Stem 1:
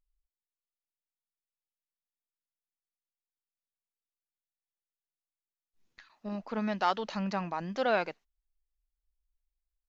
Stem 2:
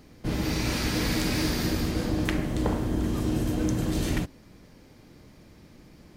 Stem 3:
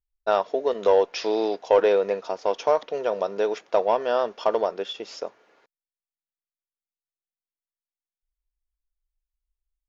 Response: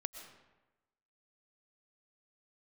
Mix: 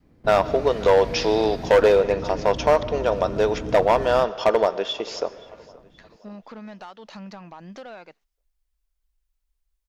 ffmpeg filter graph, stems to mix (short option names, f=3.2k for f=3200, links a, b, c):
-filter_complex "[0:a]acompressor=threshold=-38dB:ratio=10,asoftclip=type=tanh:threshold=-34dB,volume=3dB[a];[1:a]lowpass=f=1k:p=1,volume=-7dB,asplit=2[b][c];[c]volume=-8dB[d];[2:a]volume=3dB,asplit=3[e][f][g];[f]volume=-5.5dB[h];[g]volume=-20.5dB[i];[3:a]atrim=start_sample=2205[j];[d][h]amix=inputs=2:normalize=0[k];[k][j]afir=irnorm=-1:irlink=0[l];[i]aecho=0:1:526|1052|1578|2104|2630|3156:1|0.4|0.16|0.064|0.0256|0.0102[m];[a][b][e][l][m]amix=inputs=5:normalize=0,adynamicequalizer=threshold=0.0562:dfrequency=410:dqfactor=0.97:tfrequency=410:tqfactor=0.97:attack=5:release=100:ratio=0.375:range=2.5:mode=cutabove:tftype=bell,volume=10dB,asoftclip=hard,volume=-10dB"